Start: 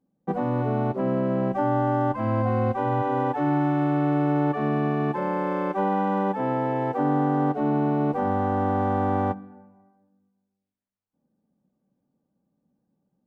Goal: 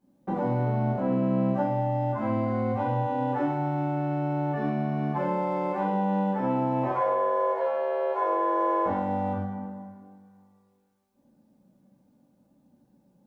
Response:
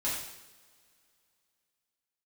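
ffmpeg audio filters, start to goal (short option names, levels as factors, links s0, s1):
-filter_complex "[0:a]acompressor=threshold=0.0178:ratio=10,asettb=1/sr,asplit=3[s0][s1][s2];[s0]atrim=end=6.834[s3];[s1]atrim=start=6.83:end=8.86,asetpts=PTS-STARTPTS,afade=t=in:d=0.004:c=qsin,afade=t=out:st=2.026:d=0.004:c=qsin,afreqshift=240[s4];[s2]atrim=start=8.856[s5];[s3][s4]acrossfade=d=0.004:c1=hsin:c2=qsin[s6];[s6][s5]acrossfade=d=0.004:c1=qsin:c2=hsin[s7];[1:a]atrim=start_sample=2205[s8];[s7][s8]afir=irnorm=-1:irlink=0,volume=1.78"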